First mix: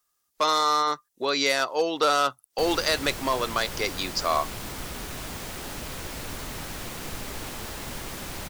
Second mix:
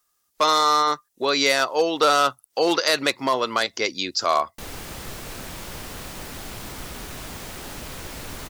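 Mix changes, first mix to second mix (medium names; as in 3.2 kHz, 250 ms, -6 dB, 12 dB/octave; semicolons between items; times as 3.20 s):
speech +4.0 dB; background: entry +2.00 s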